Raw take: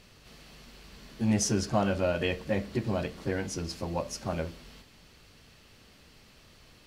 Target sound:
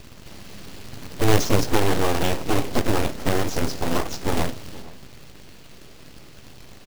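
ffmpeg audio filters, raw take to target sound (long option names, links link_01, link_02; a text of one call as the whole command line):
ffmpeg -i in.wav -filter_complex "[0:a]lowshelf=frequency=480:gain=9.5,asplit=2[link_01][link_02];[link_02]alimiter=limit=-18dB:level=0:latency=1:release=106,volume=1dB[link_03];[link_01][link_03]amix=inputs=2:normalize=0,acrossover=split=460[link_04][link_05];[link_05]acompressor=threshold=-23dB:ratio=6[link_06];[link_04][link_06]amix=inputs=2:normalize=0,aresample=16000,aeval=exprs='abs(val(0))':channel_layout=same,aresample=44100,acrusher=bits=2:mode=log:mix=0:aa=0.000001,asplit=2[link_07][link_08];[link_08]adelay=466.5,volume=-19dB,highshelf=frequency=4000:gain=-10.5[link_09];[link_07][link_09]amix=inputs=2:normalize=0" out.wav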